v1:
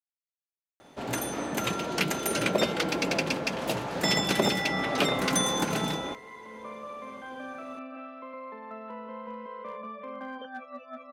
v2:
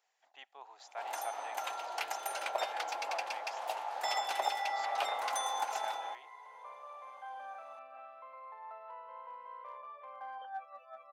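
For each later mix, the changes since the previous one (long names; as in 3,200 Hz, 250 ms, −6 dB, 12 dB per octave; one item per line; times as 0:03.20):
speech: unmuted
master: add four-pole ladder high-pass 720 Hz, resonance 70%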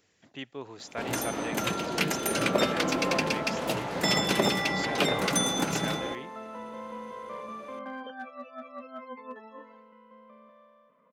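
second sound: entry −2.35 s
master: remove four-pole ladder high-pass 720 Hz, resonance 70%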